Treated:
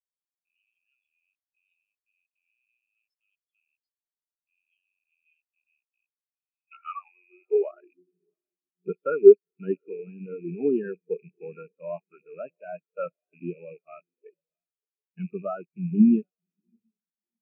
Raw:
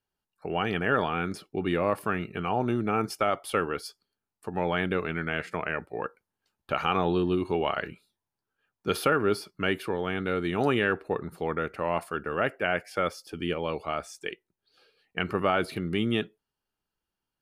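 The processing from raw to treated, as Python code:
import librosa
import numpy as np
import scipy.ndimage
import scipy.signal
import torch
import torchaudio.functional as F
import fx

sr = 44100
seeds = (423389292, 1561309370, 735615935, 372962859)

p1 = fx.rattle_buzz(x, sr, strikes_db=-43.0, level_db=-16.0)
p2 = fx.rider(p1, sr, range_db=10, speed_s=0.5)
p3 = p1 + F.gain(torch.from_numpy(p2), 1.0).numpy()
p4 = fx.echo_diffused(p3, sr, ms=696, feedback_pct=51, wet_db=-12.0)
p5 = fx.filter_sweep_highpass(p4, sr, from_hz=3700.0, to_hz=160.0, start_s=6.32, end_s=8.21, q=1.4)
y = fx.spectral_expand(p5, sr, expansion=4.0)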